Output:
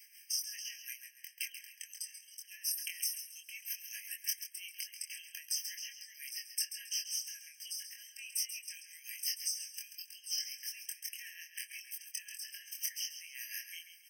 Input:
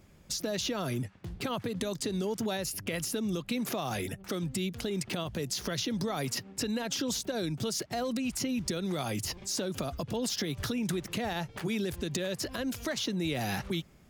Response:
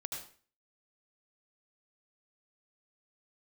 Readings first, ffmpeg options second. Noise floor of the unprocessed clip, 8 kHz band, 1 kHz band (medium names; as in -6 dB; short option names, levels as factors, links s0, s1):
-56 dBFS, -0.5 dB, under -40 dB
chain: -filter_complex "[0:a]highpass=140,adynamicequalizer=threshold=0.00447:dfrequency=240:dqfactor=2.3:tfrequency=240:tqfactor=2.3:attack=5:release=100:ratio=0.375:range=2:mode=cutabove:tftype=bell,alimiter=level_in=1.58:limit=0.0631:level=0:latency=1:release=41,volume=0.631,acompressor=threshold=0.00447:ratio=6,flanger=delay=4:depth=8.6:regen=-78:speed=0.83:shape=triangular,tremolo=f=5.6:d=0.7,crystalizer=i=8.5:c=0,asplit=2[s0][s1];[s1]adelay=24,volume=0.631[s2];[s0][s2]amix=inputs=2:normalize=0,asplit=2[s3][s4];[s4]aecho=0:1:136|272|408|544:0.316|0.108|0.0366|0.0124[s5];[s3][s5]amix=inputs=2:normalize=0,afftfilt=real='re*eq(mod(floor(b*sr/1024/1600),2),1)':imag='im*eq(mod(floor(b*sr/1024/1600),2),1)':win_size=1024:overlap=0.75,volume=1.58"